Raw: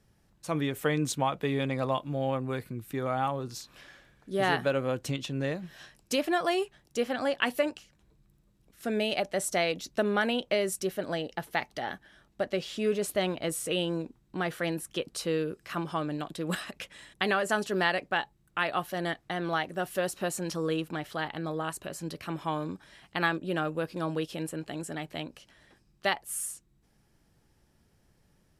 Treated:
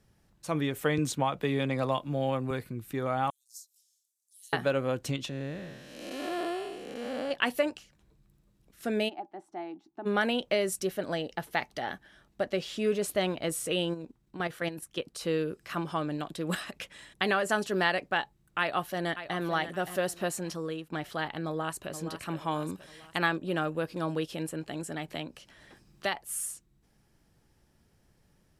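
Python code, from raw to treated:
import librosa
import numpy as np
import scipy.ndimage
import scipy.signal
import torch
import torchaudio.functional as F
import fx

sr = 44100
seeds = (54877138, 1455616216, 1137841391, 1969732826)

y = fx.band_squash(x, sr, depth_pct=40, at=(0.98, 2.51))
y = fx.cheby2_highpass(y, sr, hz=1200.0, order=4, stop_db=80, at=(3.3, 4.53))
y = fx.spec_blur(y, sr, span_ms=364.0, at=(5.29, 7.31))
y = fx.double_bandpass(y, sr, hz=520.0, octaves=1.3, at=(9.08, 10.05), fade=0.02)
y = fx.level_steps(y, sr, step_db=10, at=(13.93, 15.21), fade=0.02)
y = fx.echo_throw(y, sr, start_s=18.59, length_s=0.8, ms=570, feedback_pct=30, wet_db=-11.0)
y = fx.echo_throw(y, sr, start_s=21.46, length_s=0.46, ms=470, feedback_pct=50, wet_db=-10.0)
y = fx.high_shelf(y, sr, hz=4900.0, db=7.5, at=(22.51, 23.18))
y = fx.band_squash(y, sr, depth_pct=40, at=(25.08, 26.15))
y = fx.edit(y, sr, fx.fade_out_to(start_s=20.27, length_s=0.65, floor_db=-11.5), tone=tone)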